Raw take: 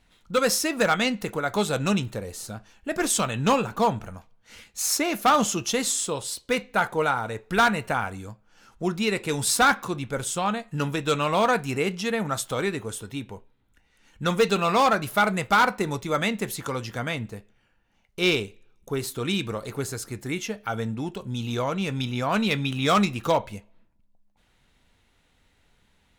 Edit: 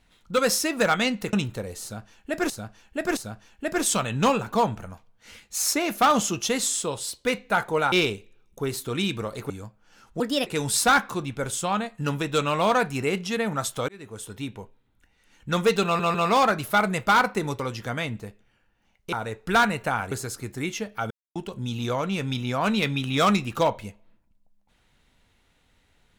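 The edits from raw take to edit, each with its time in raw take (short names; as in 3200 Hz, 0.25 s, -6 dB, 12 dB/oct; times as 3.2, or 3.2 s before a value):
1.33–1.91 cut
2.41–3.08 loop, 3 plays
7.16–8.15 swap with 18.22–19.8
8.85–9.2 speed 132%
12.62–13.11 fade in
14.58 stutter 0.15 s, 3 plays
16.03–16.69 cut
20.79–21.04 mute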